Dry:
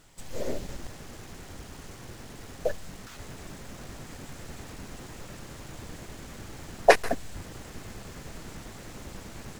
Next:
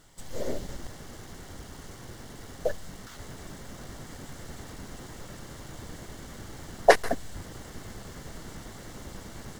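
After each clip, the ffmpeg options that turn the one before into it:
-af "bandreject=f=2.5k:w=6.6"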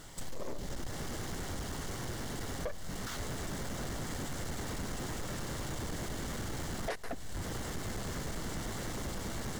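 -af "acompressor=threshold=-37dB:ratio=4,asoftclip=type=tanh:threshold=-39dB,volume=7.5dB"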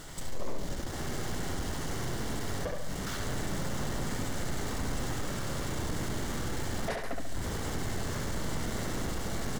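-filter_complex "[0:a]asplit=2[a][b];[b]alimiter=level_in=18dB:limit=-24dB:level=0:latency=1,volume=-18dB,volume=-2.5dB[c];[a][c]amix=inputs=2:normalize=0,asplit=2[d][e];[e]adelay=70,lowpass=f=4.2k:p=1,volume=-3dB,asplit=2[f][g];[g]adelay=70,lowpass=f=4.2k:p=1,volume=0.51,asplit=2[h][i];[i]adelay=70,lowpass=f=4.2k:p=1,volume=0.51,asplit=2[j][k];[k]adelay=70,lowpass=f=4.2k:p=1,volume=0.51,asplit=2[l][m];[m]adelay=70,lowpass=f=4.2k:p=1,volume=0.51,asplit=2[n][o];[o]adelay=70,lowpass=f=4.2k:p=1,volume=0.51,asplit=2[p][q];[q]adelay=70,lowpass=f=4.2k:p=1,volume=0.51[r];[d][f][h][j][l][n][p][r]amix=inputs=8:normalize=0"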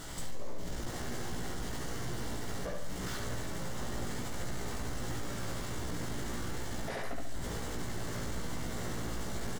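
-filter_complex "[0:a]alimiter=level_in=7.5dB:limit=-24dB:level=0:latency=1:release=71,volume=-7.5dB,asplit=2[a][b];[b]adelay=17,volume=-3dB[c];[a][c]amix=inputs=2:normalize=0"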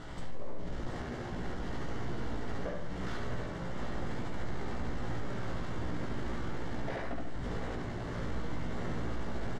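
-filter_complex "[0:a]adynamicsmooth=sensitivity=4:basefreq=2.7k,asplit=2[a][b];[b]aecho=0:1:733:0.398[c];[a][c]amix=inputs=2:normalize=0,volume=1dB"

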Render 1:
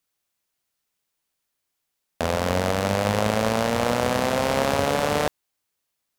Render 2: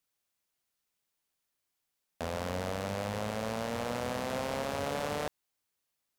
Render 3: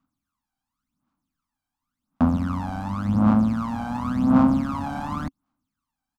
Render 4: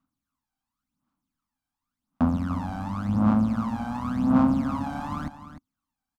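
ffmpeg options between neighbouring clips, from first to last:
-af "alimiter=limit=-17dB:level=0:latency=1:release=37,volume=-4.5dB"
-af "aphaser=in_gain=1:out_gain=1:delay=1.3:decay=0.75:speed=0.91:type=sinusoidal,firequalizer=gain_entry='entry(120,0);entry(270,12);entry(400,-19);entry(750,-4);entry(1200,3);entry(1800,-13);entry(14000,-18)':delay=0.05:min_phase=1,volume=5dB"
-af "aecho=1:1:300:0.251,volume=-3dB"

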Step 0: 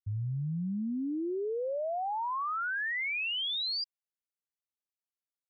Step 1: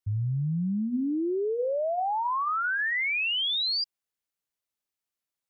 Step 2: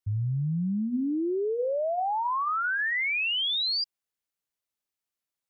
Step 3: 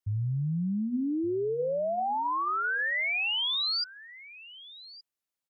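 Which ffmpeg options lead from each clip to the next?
-af "bandreject=f=232.5:t=h:w=4,bandreject=f=465:t=h:w=4,bandreject=f=697.5:t=h:w=4,bandreject=f=930:t=h:w=4,bandreject=f=1.1625k:t=h:w=4,bandreject=f=1.395k:t=h:w=4,bandreject=f=1.6275k:t=h:w=4,bandreject=f=1.86k:t=h:w=4,volume=5.5dB"
-af anull
-af "aecho=1:1:1169:0.112,volume=-1.5dB"

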